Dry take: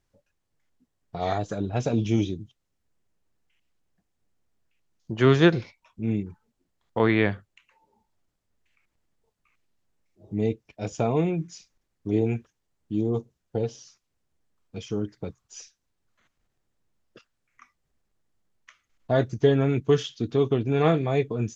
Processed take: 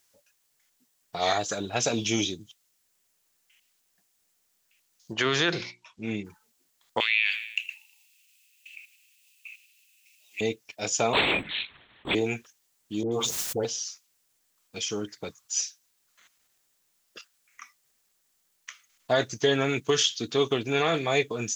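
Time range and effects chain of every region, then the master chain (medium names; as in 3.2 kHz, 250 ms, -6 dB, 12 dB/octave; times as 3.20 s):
5.13–6.25 s: low-pass 5.8 kHz + hum notches 60/120/180/240/300/360 Hz
7.00–10.41 s: resonant high-pass 2.6 kHz, resonance Q 11 + treble shelf 4.6 kHz +7 dB + feedback delay 80 ms, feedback 55%, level -22 dB
11.13–12.15 s: LPC vocoder at 8 kHz whisper + spectrum-flattening compressor 2:1
13.03–13.65 s: phase dispersion highs, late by 90 ms, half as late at 1.3 kHz + level flattener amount 70%
whole clip: tilt EQ +4.5 dB/octave; peak limiter -16 dBFS; trim +4 dB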